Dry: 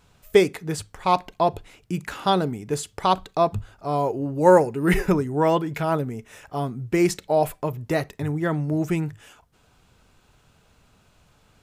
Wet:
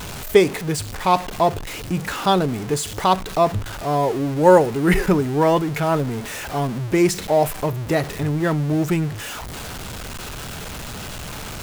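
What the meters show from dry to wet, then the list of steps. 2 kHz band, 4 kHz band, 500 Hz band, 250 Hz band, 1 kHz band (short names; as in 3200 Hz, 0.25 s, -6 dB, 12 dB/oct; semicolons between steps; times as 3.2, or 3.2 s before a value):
+4.5 dB, +5.5 dB, +3.0 dB, +3.5 dB, +3.0 dB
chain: zero-crossing step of -28.5 dBFS; gain +2 dB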